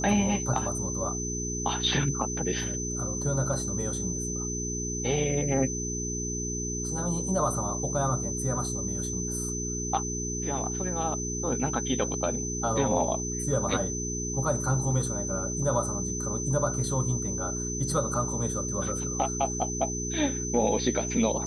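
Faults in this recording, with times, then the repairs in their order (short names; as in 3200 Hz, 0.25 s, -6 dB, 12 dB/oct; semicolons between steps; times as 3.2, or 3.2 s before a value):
hum 60 Hz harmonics 7 -34 dBFS
tone 6100 Hz -33 dBFS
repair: de-hum 60 Hz, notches 7; notch 6100 Hz, Q 30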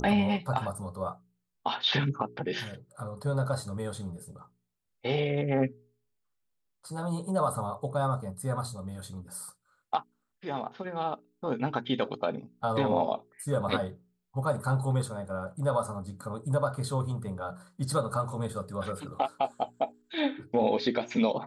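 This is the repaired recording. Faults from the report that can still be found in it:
none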